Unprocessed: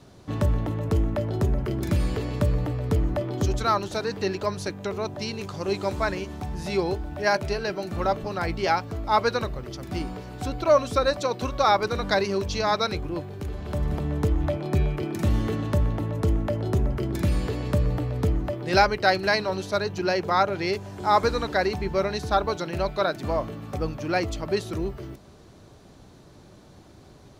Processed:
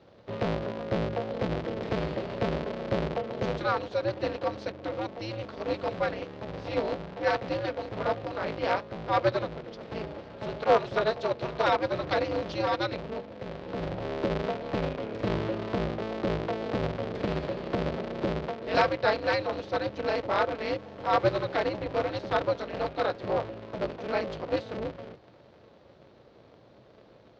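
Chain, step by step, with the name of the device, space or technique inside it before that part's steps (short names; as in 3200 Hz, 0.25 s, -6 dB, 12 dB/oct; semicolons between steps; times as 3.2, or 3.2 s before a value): ring modulator pedal into a guitar cabinet (polarity switched at an audio rate 110 Hz; speaker cabinet 83–4400 Hz, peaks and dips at 120 Hz +9 dB, 170 Hz -3 dB, 250 Hz -5 dB, 360 Hz +4 dB, 560 Hz +9 dB); gain -6.5 dB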